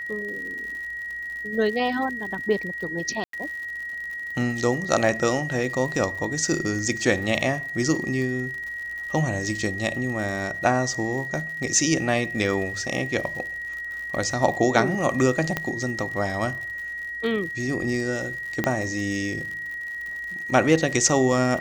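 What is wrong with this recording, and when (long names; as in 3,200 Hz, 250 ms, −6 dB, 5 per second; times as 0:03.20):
surface crackle 86 per second −33 dBFS
whistle 1,900 Hz −30 dBFS
0:03.24–0:03.33: drop-out 93 ms
0:15.57: click −10 dBFS
0:18.64: click −9 dBFS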